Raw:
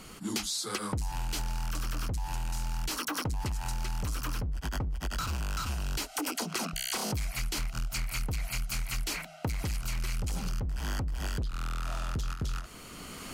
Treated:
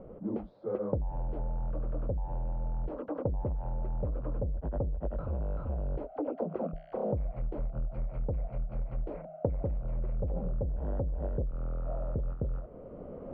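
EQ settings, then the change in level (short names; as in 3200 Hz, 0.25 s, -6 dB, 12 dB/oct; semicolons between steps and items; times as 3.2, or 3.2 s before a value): synth low-pass 550 Hz, resonance Q 5.8; air absorption 320 m; bell 310 Hz -2 dB; 0.0 dB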